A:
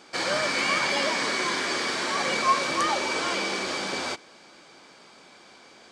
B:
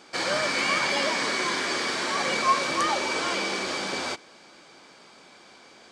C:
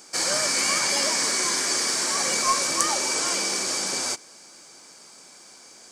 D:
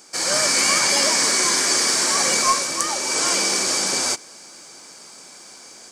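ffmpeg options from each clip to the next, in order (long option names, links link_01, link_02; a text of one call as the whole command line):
ffmpeg -i in.wav -af anull out.wav
ffmpeg -i in.wav -af "aeval=exprs='0.299*(cos(1*acos(clip(val(0)/0.299,-1,1)))-cos(1*PI/2))+0.0106*(cos(2*acos(clip(val(0)/0.299,-1,1)))-cos(2*PI/2))+0.00188*(cos(7*acos(clip(val(0)/0.299,-1,1)))-cos(7*PI/2))':channel_layout=same,aexciter=amount=6.7:drive=5:freq=5100,volume=-2dB" out.wav
ffmpeg -i in.wav -af "dynaudnorm=framelen=190:gausssize=3:maxgain=5.5dB" out.wav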